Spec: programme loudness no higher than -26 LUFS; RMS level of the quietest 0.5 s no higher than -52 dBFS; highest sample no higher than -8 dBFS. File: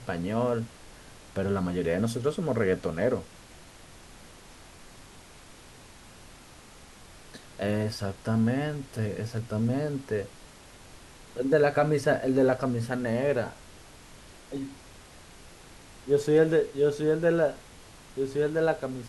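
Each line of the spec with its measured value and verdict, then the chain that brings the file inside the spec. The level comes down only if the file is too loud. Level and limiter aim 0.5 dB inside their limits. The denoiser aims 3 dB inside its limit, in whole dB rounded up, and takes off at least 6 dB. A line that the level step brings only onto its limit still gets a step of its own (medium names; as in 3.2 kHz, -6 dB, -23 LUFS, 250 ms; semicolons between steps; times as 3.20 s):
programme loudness -27.5 LUFS: pass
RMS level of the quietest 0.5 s -50 dBFS: fail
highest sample -10.5 dBFS: pass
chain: noise reduction 6 dB, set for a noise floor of -50 dBFS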